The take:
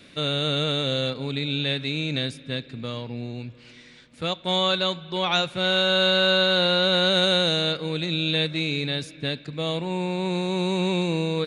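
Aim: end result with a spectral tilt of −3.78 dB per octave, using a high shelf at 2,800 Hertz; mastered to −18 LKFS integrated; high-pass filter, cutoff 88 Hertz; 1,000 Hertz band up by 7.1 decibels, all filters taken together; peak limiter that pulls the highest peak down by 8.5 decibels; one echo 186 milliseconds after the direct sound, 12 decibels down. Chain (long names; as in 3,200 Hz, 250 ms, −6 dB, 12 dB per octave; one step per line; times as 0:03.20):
high-pass filter 88 Hz
parametric band 1,000 Hz +8 dB
high-shelf EQ 2,800 Hz +9 dB
brickwall limiter −11 dBFS
single-tap delay 186 ms −12 dB
level +3 dB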